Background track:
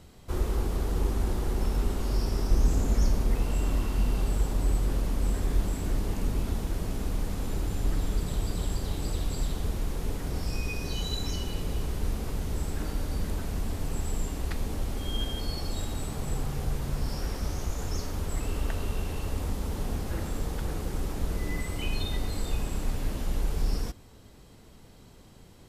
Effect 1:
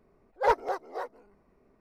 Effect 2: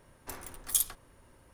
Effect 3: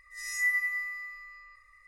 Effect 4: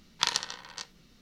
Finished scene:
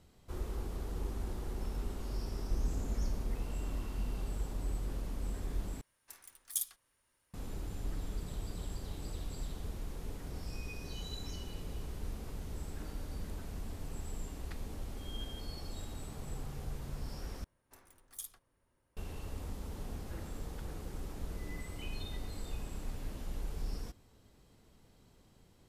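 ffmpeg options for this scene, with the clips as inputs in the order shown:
-filter_complex "[2:a]asplit=2[s0][s1];[0:a]volume=0.282[s2];[s0]tiltshelf=f=1200:g=-9[s3];[s2]asplit=3[s4][s5][s6];[s4]atrim=end=5.814[s7];[s3]atrim=end=1.53,asetpts=PTS-STARTPTS,volume=0.15[s8];[s5]atrim=start=7.336:end=17.444[s9];[s1]atrim=end=1.53,asetpts=PTS-STARTPTS,volume=0.133[s10];[s6]atrim=start=18.966[s11];[s7][s8]acrossfade=d=0.004:c1=hsin:c2=hsin[s12];[s12][s9]acrossfade=d=0.004:c1=hsin:c2=hsin[s13];[s13][s10]acrossfade=d=0.004:c1=hsin:c2=hsin[s14];[s14][s11]acrossfade=d=0.004:c1=hsin:c2=hsin"

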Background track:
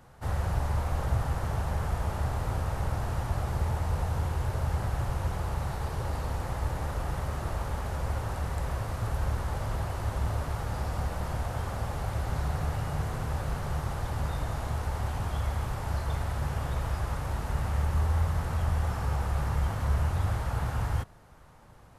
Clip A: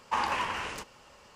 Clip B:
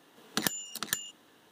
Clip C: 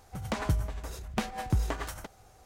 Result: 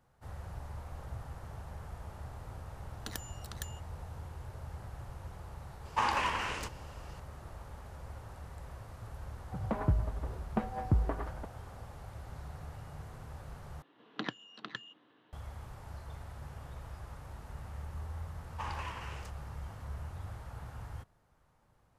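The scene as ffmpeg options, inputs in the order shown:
-filter_complex "[2:a]asplit=2[s0][s1];[1:a]asplit=2[s2][s3];[0:a]volume=0.178[s4];[3:a]lowpass=1100[s5];[s1]highpass=110,equalizer=f=120:t=q:w=4:g=8,equalizer=f=300:t=q:w=4:g=5,equalizer=f=1100:t=q:w=4:g=4,lowpass=f=3500:w=0.5412,lowpass=f=3500:w=1.3066[s6];[s4]asplit=2[s7][s8];[s7]atrim=end=13.824[s9];[s6]atrim=end=1.51,asetpts=PTS-STARTPTS,volume=0.473[s10];[s8]atrim=start=15.326[s11];[s0]atrim=end=1.51,asetpts=PTS-STARTPTS,volume=0.224,afade=t=in:d=0.004:c=hsin,afade=t=out:st=1.506:d=0.004:c=hsin,adelay=2690[s12];[s2]atrim=end=1.35,asetpts=PTS-STARTPTS,volume=0.891,afade=t=in:d=0.004:c=hsin,afade=t=out:st=1.346:d=0.004:c=hsin,adelay=257985S[s13];[s5]atrim=end=2.45,asetpts=PTS-STARTPTS,volume=0.944,afade=t=in:d=0.004:c=hsin,afade=t=out:st=2.446:d=0.004:c=hsin,adelay=9390[s14];[s3]atrim=end=1.35,asetpts=PTS-STARTPTS,volume=0.251,afade=t=in:d=0.004:c=hsin,afade=t=out:st=1.346:d=0.004:c=hsin,adelay=18470[s15];[s9][s10]acrossfade=d=0.004:c1=hsin:c2=hsin[s16];[s16][s11]acrossfade=d=0.004:c1=hsin:c2=hsin[s17];[s17][s12][s13][s14][s15]amix=inputs=5:normalize=0"

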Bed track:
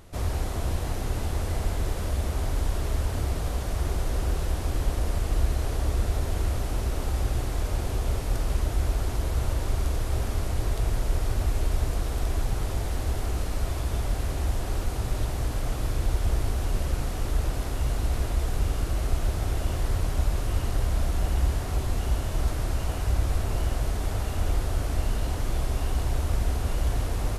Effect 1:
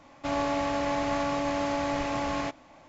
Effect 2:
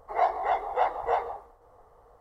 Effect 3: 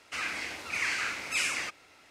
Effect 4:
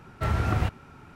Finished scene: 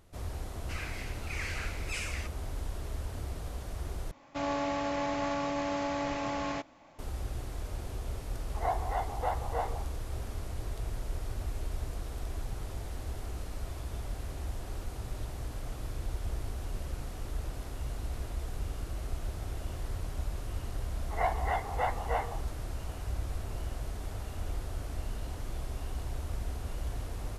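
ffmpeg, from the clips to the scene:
-filter_complex "[2:a]asplit=2[s0][s1];[0:a]volume=0.299[s2];[s1]equalizer=f=2200:w=1.4:g=9[s3];[s2]asplit=2[s4][s5];[s4]atrim=end=4.114[s6];[1:a]atrim=end=2.88,asetpts=PTS-STARTPTS,volume=0.631[s7];[s5]atrim=start=6.986[s8];[3:a]atrim=end=2.1,asetpts=PTS-STARTPTS,volume=0.376,afade=t=in:d=0.004:c=hsin,afade=t=out:st=2.096:d=0.004:c=hsin,adelay=570[s9];[s0]atrim=end=2.2,asetpts=PTS-STARTPTS,volume=0.422,afade=t=in:d=0.004:c=hsin,afade=t=out:st=2.196:d=0.004:c=hsin,adelay=8460[s10];[s3]atrim=end=2.2,asetpts=PTS-STARTPTS,volume=0.447,afade=t=in:d=0.004:c=hsin,afade=t=out:st=2.196:d=0.004:c=hsin,adelay=21020[s11];[s6][s7]acrossfade=d=0.004:c1=hsin:c2=hsin[s12];[s12][s8]acrossfade=d=0.004:c1=hsin:c2=hsin[s13];[s13][s9][s10][s11]amix=inputs=4:normalize=0"

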